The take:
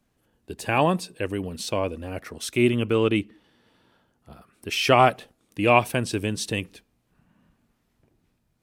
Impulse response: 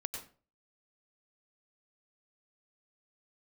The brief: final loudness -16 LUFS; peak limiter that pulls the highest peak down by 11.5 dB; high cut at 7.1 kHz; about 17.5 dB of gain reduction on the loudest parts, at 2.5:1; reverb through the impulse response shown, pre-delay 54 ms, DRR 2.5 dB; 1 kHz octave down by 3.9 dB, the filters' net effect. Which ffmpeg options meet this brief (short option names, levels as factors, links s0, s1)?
-filter_complex "[0:a]lowpass=7100,equalizer=f=1000:t=o:g=-5.5,acompressor=threshold=0.00794:ratio=2.5,alimiter=level_in=2.82:limit=0.0631:level=0:latency=1,volume=0.355,asplit=2[s0][s1];[1:a]atrim=start_sample=2205,adelay=54[s2];[s1][s2]afir=irnorm=-1:irlink=0,volume=0.75[s3];[s0][s3]amix=inputs=2:normalize=0,volume=21.1"